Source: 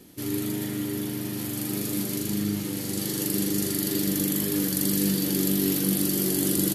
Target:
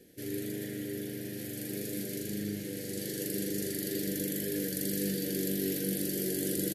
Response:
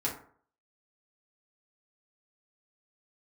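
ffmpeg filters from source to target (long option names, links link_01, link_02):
-af "firequalizer=gain_entry='entry(300,0);entry(480,10);entry(1100,-23);entry(1600,6);entry(2700,0)':delay=0.05:min_phase=1,volume=-9dB"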